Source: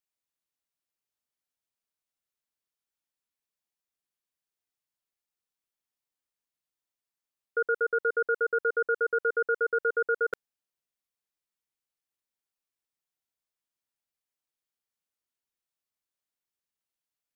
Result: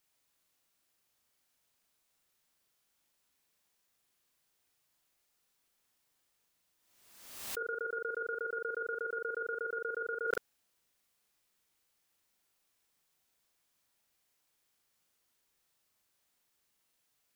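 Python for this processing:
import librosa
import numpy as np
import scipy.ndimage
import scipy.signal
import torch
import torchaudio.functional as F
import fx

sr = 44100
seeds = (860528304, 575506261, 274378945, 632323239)

y = fx.over_compress(x, sr, threshold_db=-37.0, ratio=-1.0)
y = fx.doubler(y, sr, ms=40.0, db=-3.5)
y = fx.pre_swell(y, sr, db_per_s=52.0)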